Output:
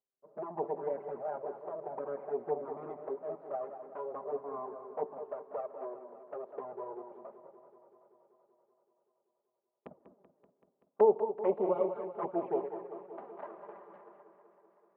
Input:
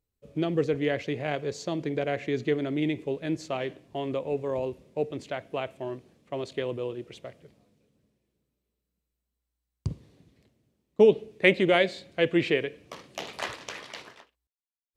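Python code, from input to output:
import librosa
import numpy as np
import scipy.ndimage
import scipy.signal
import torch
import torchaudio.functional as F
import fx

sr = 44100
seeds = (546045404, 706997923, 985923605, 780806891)

p1 = fx.lower_of_two(x, sr, delay_ms=5.0)
p2 = scipy.signal.sosfilt(scipy.signal.butter(4, 1000.0, 'lowpass', fs=sr, output='sos'), p1)
p3 = p2 + fx.echo_single(p2, sr, ms=205, db=-10.5, dry=0)
p4 = fx.env_flanger(p3, sr, rest_ms=7.8, full_db=-24.0)
p5 = scipy.signal.sosfilt(scipy.signal.butter(2, 460.0, 'highpass', fs=sr, output='sos'), p4)
y = fx.echo_warbled(p5, sr, ms=191, feedback_pct=74, rate_hz=2.8, cents=69, wet_db=-13.0)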